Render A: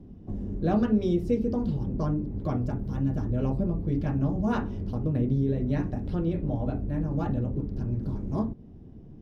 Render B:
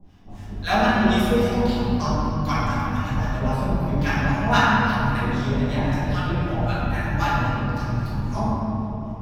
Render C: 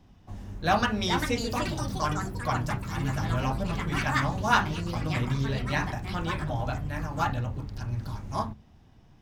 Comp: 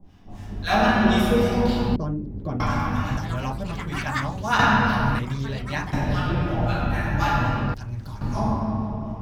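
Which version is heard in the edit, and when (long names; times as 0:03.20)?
B
0:01.96–0:02.60: punch in from A
0:03.17–0:04.59: punch in from C
0:05.19–0:05.93: punch in from C
0:07.74–0:08.21: punch in from C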